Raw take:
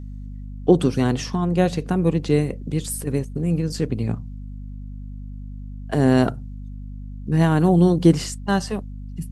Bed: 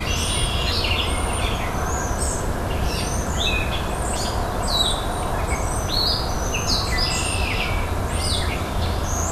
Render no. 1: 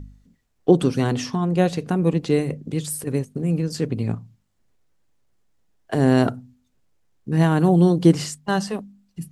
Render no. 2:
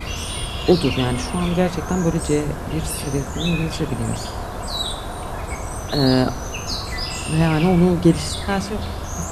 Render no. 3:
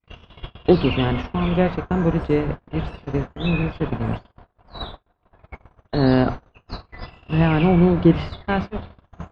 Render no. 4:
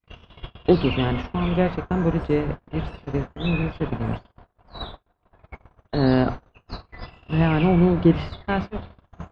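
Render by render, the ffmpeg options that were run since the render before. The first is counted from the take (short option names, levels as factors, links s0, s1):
-af "bandreject=f=50:t=h:w=4,bandreject=f=100:t=h:w=4,bandreject=f=150:t=h:w=4,bandreject=f=200:t=h:w=4,bandreject=f=250:t=h:w=4"
-filter_complex "[1:a]volume=0.562[s0];[0:a][s0]amix=inputs=2:normalize=0"
-af "agate=range=0.00158:threshold=0.0708:ratio=16:detection=peak,lowpass=f=3200:w=0.5412,lowpass=f=3200:w=1.3066"
-af "volume=0.794"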